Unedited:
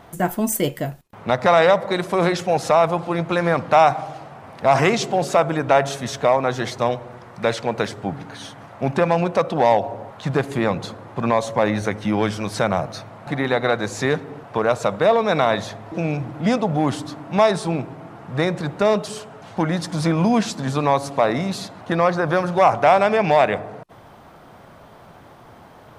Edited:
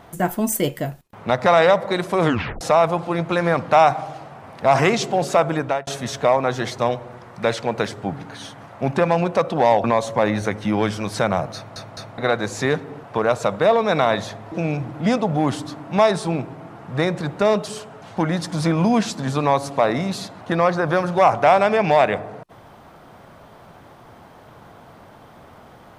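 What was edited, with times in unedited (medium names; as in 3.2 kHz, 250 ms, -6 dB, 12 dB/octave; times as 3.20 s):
2.22 s: tape stop 0.39 s
5.58–5.87 s: fade out
9.84–11.24 s: delete
12.95 s: stutter in place 0.21 s, 3 plays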